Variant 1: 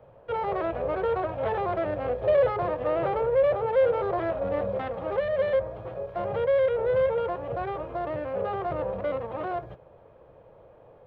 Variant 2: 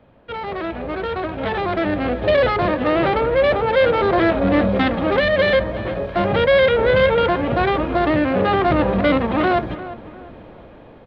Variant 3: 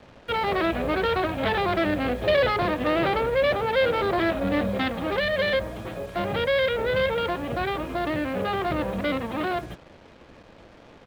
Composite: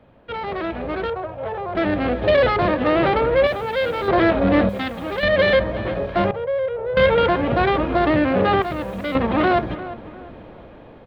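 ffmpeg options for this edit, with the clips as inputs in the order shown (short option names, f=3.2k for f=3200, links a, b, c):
-filter_complex "[0:a]asplit=2[a][b];[2:a]asplit=3[c][d][e];[1:a]asplit=6[f][g][h][i][j][k];[f]atrim=end=1.102[l];[a]atrim=start=1.098:end=1.752[m];[g]atrim=start=1.748:end=3.472[n];[c]atrim=start=3.468:end=4.082[o];[h]atrim=start=4.078:end=4.692[p];[d]atrim=start=4.688:end=5.232[q];[i]atrim=start=5.228:end=6.312[r];[b]atrim=start=6.308:end=6.972[s];[j]atrim=start=6.968:end=8.622[t];[e]atrim=start=8.618:end=9.152[u];[k]atrim=start=9.148[v];[l][m]acrossfade=d=0.004:c1=hsin:c2=hsin[w];[w][n]acrossfade=d=0.004:c1=hsin:c2=hsin[x];[x][o]acrossfade=d=0.004:c1=hsin:c2=hsin[y];[y][p]acrossfade=d=0.004:c1=hsin:c2=hsin[z];[z][q]acrossfade=d=0.004:c1=hsin:c2=hsin[aa];[aa][r]acrossfade=d=0.004:c1=hsin:c2=hsin[ab];[ab][s]acrossfade=d=0.004:c1=hsin:c2=hsin[ac];[ac][t]acrossfade=d=0.004:c1=hsin:c2=hsin[ad];[ad][u]acrossfade=d=0.004:c1=hsin:c2=hsin[ae];[ae][v]acrossfade=d=0.004:c1=hsin:c2=hsin"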